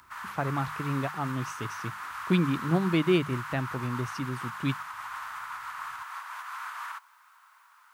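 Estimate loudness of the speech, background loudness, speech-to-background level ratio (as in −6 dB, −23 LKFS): −30.5 LKFS, −38.0 LKFS, 7.5 dB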